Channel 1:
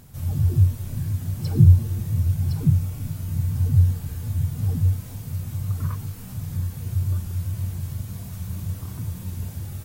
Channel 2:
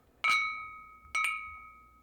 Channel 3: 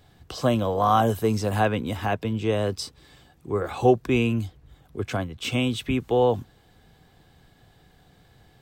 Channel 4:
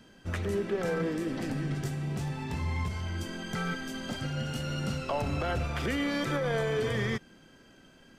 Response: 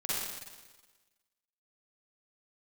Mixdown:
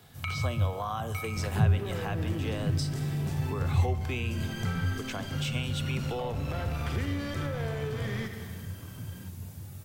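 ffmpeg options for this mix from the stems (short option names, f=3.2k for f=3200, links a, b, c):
-filter_complex "[0:a]highpass=89,volume=-8dB[a];[1:a]acompressor=threshold=-29dB:ratio=6,volume=1.5dB[b];[2:a]highpass=f=1.1k:p=1,volume=2.5dB,asplit=2[c][d];[d]volume=-21dB[e];[3:a]asoftclip=type=tanh:threshold=-29.5dB,adelay=1100,volume=2dB,asplit=2[f][g];[g]volume=-12dB[h];[4:a]atrim=start_sample=2205[i];[e][h]amix=inputs=2:normalize=0[j];[j][i]afir=irnorm=-1:irlink=0[k];[a][b][c][f][k]amix=inputs=5:normalize=0,acrossover=split=180[l][m];[m]acompressor=threshold=-36dB:ratio=3[n];[l][n]amix=inputs=2:normalize=0"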